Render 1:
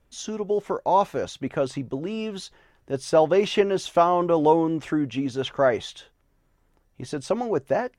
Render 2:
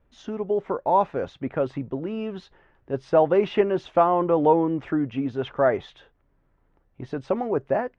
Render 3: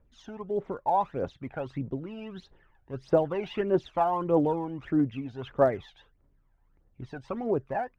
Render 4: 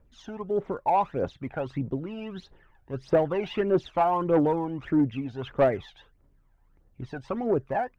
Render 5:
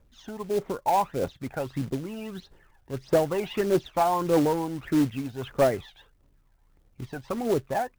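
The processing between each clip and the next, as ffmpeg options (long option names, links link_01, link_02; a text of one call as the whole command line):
ffmpeg -i in.wav -af "lowpass=2100" out.wav
ffmpeg -i in.wav -af "aphaser=in_gain=1:out_gain=1:delay=1.4:decay=0.66:speed=1.6:type=triangular,volume=-8dB" out.wav
ffmpeg -i in.wav -af "asoftclip=type=tanh:threshold=-17dB,volume=3.5dB" out.wav
ffmpeg -i in.wav -af "acrusher=bits=4:mode=log:mix=0:aa=0.000001" out.wav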